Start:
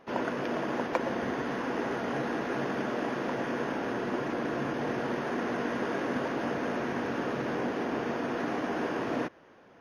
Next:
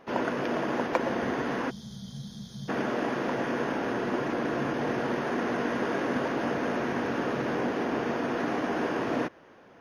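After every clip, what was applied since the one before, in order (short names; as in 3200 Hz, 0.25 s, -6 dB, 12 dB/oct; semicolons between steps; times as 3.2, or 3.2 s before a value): spectral gain 1.7–2.69, 220–3100 Hz -29 dB; gain +2.5 dB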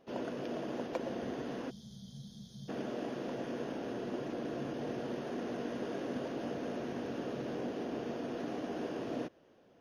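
band shelf 1400 Hz -8 dB; gain -8.5 dB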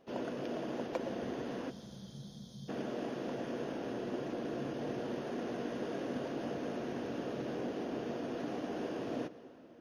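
reverb RT60 4.0 s, pre-delay 99 ms, DRR 14.5 dB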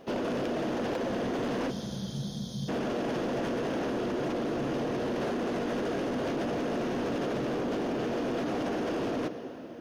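in parallel at +1 dB: negative-ratio compressor -41 dBFS, ratio -0.5; on the sum: overloaded stage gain 32.5 dB; gain +5 dB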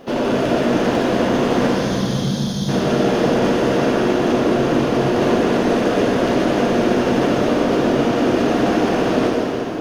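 plate-style reverb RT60 3.1 s, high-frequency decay 1×, DRR -4 dB; gain +9 dB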